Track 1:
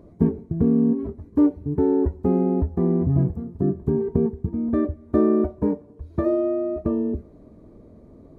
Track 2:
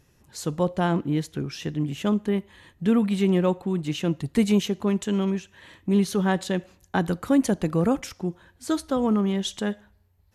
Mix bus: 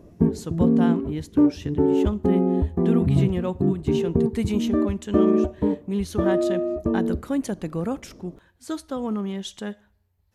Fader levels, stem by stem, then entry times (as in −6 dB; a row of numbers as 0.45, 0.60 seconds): 0.0, −5.0 decibels; 0.00, 0.00 seconds